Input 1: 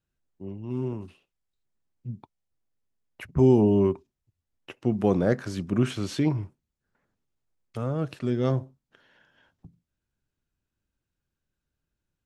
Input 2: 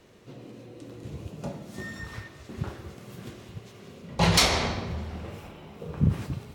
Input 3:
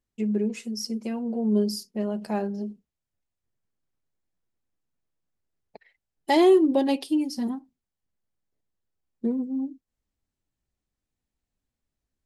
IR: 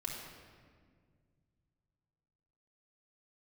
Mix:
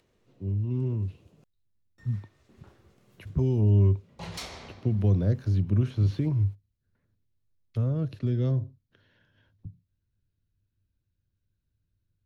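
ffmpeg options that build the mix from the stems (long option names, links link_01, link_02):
-filter_complex "[0:a]lowshelf=frequency=230:gain=11.5,acrossover=split=160|500|1100|3500[link_01][link_02][link_03][link_04][link_05];[link_01]acompressor=threshold=-23dB:ratio=4[link_06];[link_02]acompressor=threshold=-27dB:ratio=4[link_07];[link_03]acompressor=threshold=-32dB:ratio=4[link_08];[link_04]acompressor=threshold=-49dB:ratio=4[link_09];[link_05]acompressor=threshold=-52dB:ratio=4[link_10];[link_06][link_07][link_08][link_09][link_10]amix=inputs=5:normalize=0,equalizer=frequency=100:width_type=o:width=0.33:gain=12,equalizer=frequency=800:width_type=o:width=0.33:gain=-9,equalizer=frequency=1250:width_type=o:width=0.33:gain=-4,equalizer=frequency=4000:width_type=o:width=0.33:gain=5,equalizer=frequency=8000:width_type=o:width=0.33:gain=-12,volume=-5.5dB[link_11];[1:a]acompressor=mode=upward:threshold=-47dB:ratio=2.5,asoftclip=type=hard:threshold=-11dB,volume=-18dB,asplit=3[link_12][link_13][link_14];[link_12]atrim=end=1.44,asetpts=PTS-STARTPTS,afade=type=out:start_time=1.436:duration=0.004:curve=hsin[link_15];[link_13]atrim=start=1.44:end=1.98,asetpts=PTS-STARTPTS,volume=0[link_16];[link_14]atrim=start=1.98,asetpts=PTS-STARTPTS,afade=type=in:duration=0.004:curve=hsin[link_17];[link_15][link_16][link_17]concat=n=3:v=0:a=1[link_18];[link_11][link_18]amix=inputs=2:normalize=0"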